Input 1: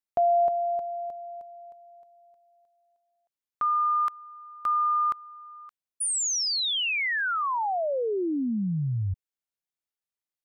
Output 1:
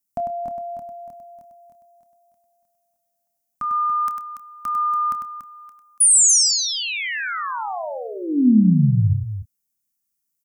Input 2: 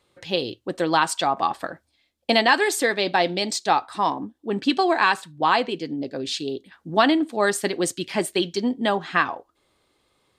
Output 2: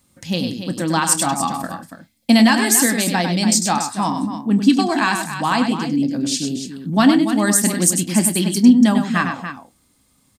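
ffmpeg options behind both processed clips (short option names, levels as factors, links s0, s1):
-filter_complex "[0:a]lowshelf=f=310:t=q:w=3:g=8,aexciter=amount=6.4:drive=1.2:freq=5300,asplit=2[s0][s1];[s1]adelay=28,volume=0.2[s2];[s0][s2]amix=inputs=2:normalize=0,asplit=2[s3][s4];[s4]aecho=0:1:99.13|285.7:0.447|0.316[s5];[s3][s5]amix=inputs=2:normalize=0"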